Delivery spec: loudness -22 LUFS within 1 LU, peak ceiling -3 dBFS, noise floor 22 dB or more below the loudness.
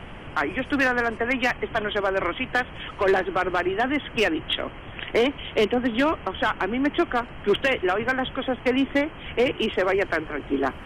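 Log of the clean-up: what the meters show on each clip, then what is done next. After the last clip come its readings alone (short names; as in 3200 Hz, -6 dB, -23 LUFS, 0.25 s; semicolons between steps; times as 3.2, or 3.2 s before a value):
clipped 0.8%; flat tops at -14.5 dBFS; noise floor -40 dBFS; noise floor target -47 dBFS; loudness -24.5 LUFS; peak -14.5 dBFS; loudness target -22.0 LUFS
-> clip repair -14.5 dBFS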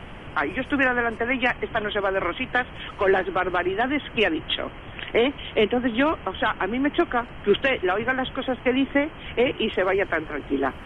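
clipped 0.0%; noise floor -40 dBFS; noise floor target -46 dBFS
-> noise print and reduce 6 dB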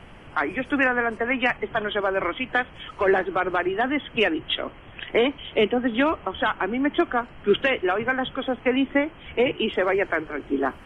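noise floor -45 dBFS; noise floor target -46 dBFS
-> noise print and reduce 6 dB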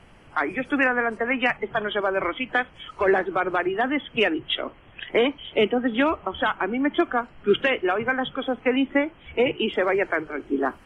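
noise floor -51 dBFS; loudness -24.0 LUFS; peak -8.5 dBFS; loudness target -22.0 LUFS
-> gain +2 dB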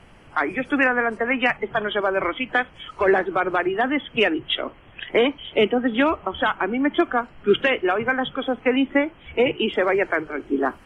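loudness -22.0 LUFS; peak -6.5 dBFS; noise floor -49 dBFS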